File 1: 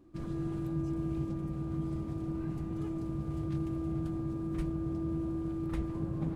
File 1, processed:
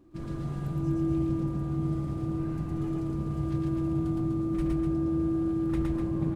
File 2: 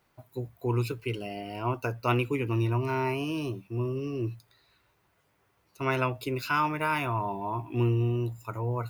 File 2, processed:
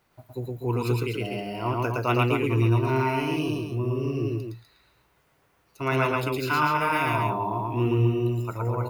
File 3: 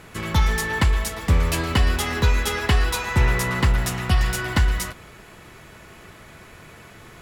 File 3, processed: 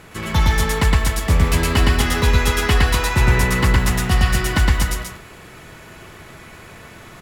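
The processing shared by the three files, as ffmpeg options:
-af "aecho=1:1:113.7|247.8:0.891|0.501,volume=1.5dB"

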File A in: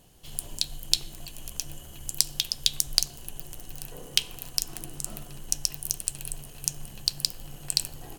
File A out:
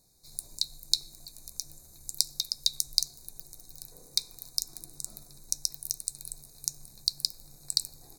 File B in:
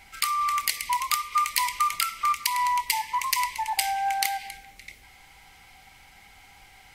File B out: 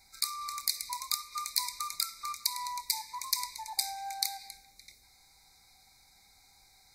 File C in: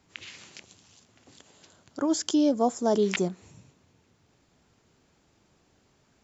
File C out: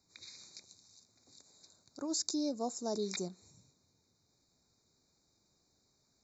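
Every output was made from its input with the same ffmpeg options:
-af "asuperstop=centerf=3000:order=20:qfactor=2.4,highshelf=f=2.5k:t=q:w=3:g=8,volume=-12.5dB"

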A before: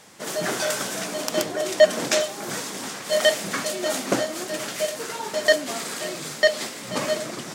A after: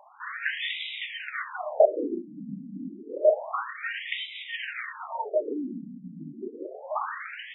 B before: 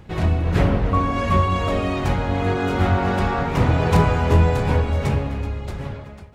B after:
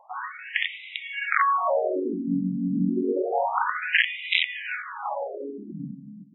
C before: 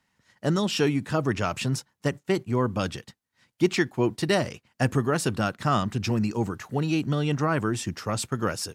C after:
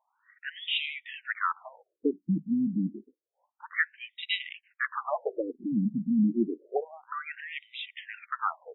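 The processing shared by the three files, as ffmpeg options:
-af "highpass=47,aeval=exprs='(mod(2.51*val(0)+1,2)-1)/2.51':c=same,afftfilt=real='re*between(b*sr/1024,200*pow(2800/200,0.5+0.5*sin(2*PI*0.29*pts/sr))/1.41,200*pow(2800/200,0.5+0.5*sin(2*PI*0.29*pts/sr))*1.41)':imag='im*between(b*sr/1024,200*pow(2800/200,0.5+0.5*sin(2*PI*0.29*pts/sr))/1.41,200*pow(2800/200,0.5+0.5*sin(2*PI*0.29*pts/sr))*1.41)':win_size=1024:overlap=0.75,volume=3.5dB"

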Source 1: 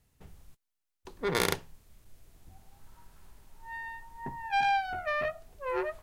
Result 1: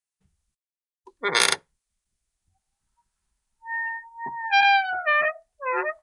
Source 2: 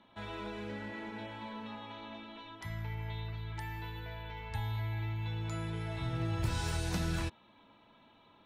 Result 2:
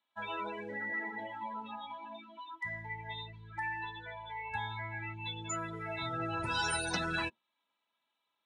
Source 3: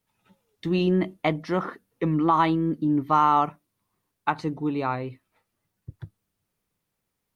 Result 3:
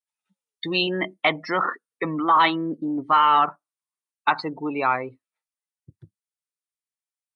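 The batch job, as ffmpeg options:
-filter_complex "[0:a]afftdn=nr=31:nf=-38,aresample=22050,aresample=44100,apsyclip=20dB,aderivative,acrossover=split=2100[a][b];[a]acontrast=61[c];[c][b]amix=inputs=2:normalize=0"

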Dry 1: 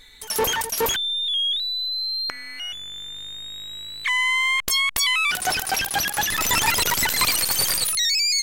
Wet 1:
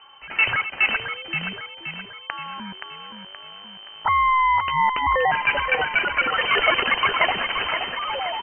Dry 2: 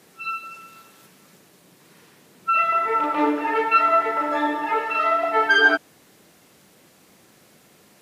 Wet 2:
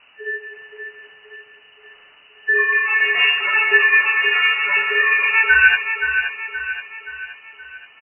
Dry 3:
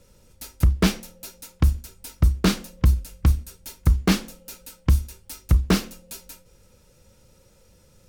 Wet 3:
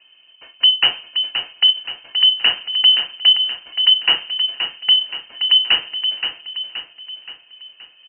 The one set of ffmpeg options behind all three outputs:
-af "lowpass=f=2.6k:t=q:w=0.5098,lowpass=f=2.6k:t=q:w=0.6013,lowpass=f=2.6k:t=q:w=0.9,lowpass=f=2.6k:t=q:w=2.563,afreqshift=-3100,aecho=1:1:524|1048|1572|2096|2620|3144:0.422|0.207|0.101|0.0496|0.0243|0.0119,volume=3.5dB"

